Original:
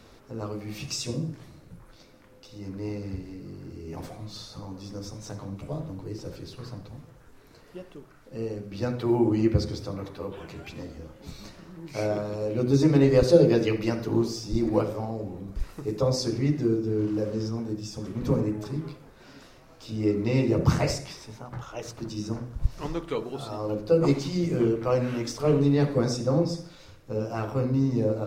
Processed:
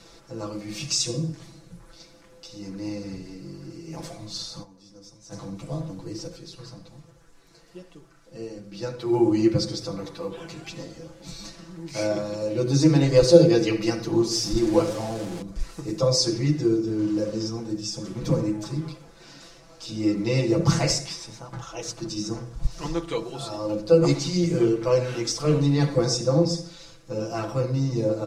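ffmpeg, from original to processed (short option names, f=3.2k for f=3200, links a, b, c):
-filter_complex "[0:a]asplit=3[a][b][c];[a]afade=t=out:st=6.26:d=0.02[d];[b]flanger=delay=3.9:depth=2.2:regen=-78:speed=1.9:shape=triangular,afade=t=in:st=6.26:d=0.02,afade=t=out:st=9.12:d=0.02[e];[c]afade=t=in:st=9.12:d=0.02[f];[d][e][f]amix=inputs=3:normalize=0,asettb=1/sr,asplit=3[g][h][i];[g]atrim=end=14.314[j];[h]atrim=start=14.31:end=15.42,asetpts=PTS-STARTPTS,afade=t=in:d=0.004:c=qsin,afade=t=out:st=1.106:d=0.004:c=qsin,aeval=exprs='val(0)+0.5*0.0168*sgn(val(0))':c=same[k];[i]atrim=start=15.416[l];[j][k]acrossfade=d=0.004:c1=hsin:c2=qsin[m];[m][l]acrossfade=d=0.004:c1=qsin:c2=hsin,asplit=3[n][o][p];[n]atrim=end=4.77,asetpts=PTS-STARTPTS,afade=t=out:st=4.62:d=0.15:c=exp:silence=0.199526[q];[o]atrim=start=4.77:end=5.18,asetpts=PTS-STARTPTS,volume=-14dB[r];[p]atrim=start=5.18,asetpts=PTS-STARTPTS,afade=t=in:d=0.15:c=exp:silence=0.199526[s];[q][r][s]concat=n=3:v=0:a=1,lowpass=7.7k,bass=f=250:g=-1,treble=f=4k:g=11,aecho=1:1:6:0.92,volume=-1dB"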